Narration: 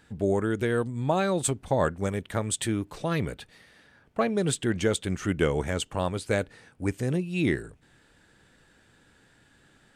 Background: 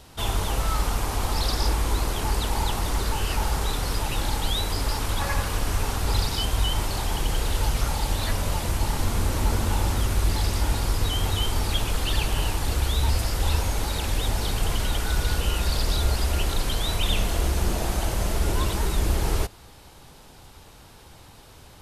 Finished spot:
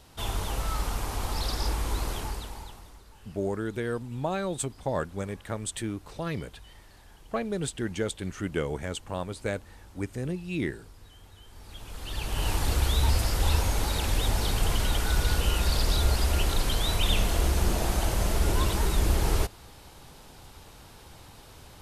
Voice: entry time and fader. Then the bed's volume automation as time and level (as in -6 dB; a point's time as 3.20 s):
3.15 s, -5.0 dB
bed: 2.15 s -5.5 dB
3.04 s -27.5 dB
11.43 s -27.5 dB
12.53 s -1 dB